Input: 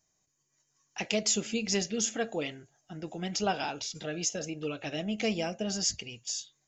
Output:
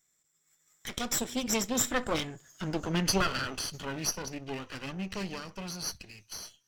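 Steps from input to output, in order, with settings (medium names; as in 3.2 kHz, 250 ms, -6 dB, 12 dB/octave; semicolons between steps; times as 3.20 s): comb filter that takes the minimum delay 0.61 ms; Doppler pass-by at 2.64 s, 41 m/s, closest 23 m; tape noise reduction on one side only encoder only; trim +9 dB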